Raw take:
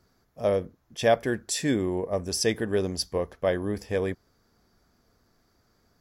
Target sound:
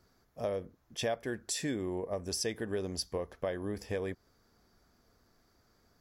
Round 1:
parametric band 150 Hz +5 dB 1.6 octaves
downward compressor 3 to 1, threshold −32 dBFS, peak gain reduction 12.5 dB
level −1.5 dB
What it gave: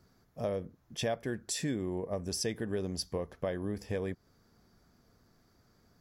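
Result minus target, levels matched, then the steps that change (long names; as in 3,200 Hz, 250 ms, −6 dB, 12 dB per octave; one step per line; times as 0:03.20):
125 Hz band +3.0 dB
change: parametric band 150 Hz −2 dB 1.6 octaves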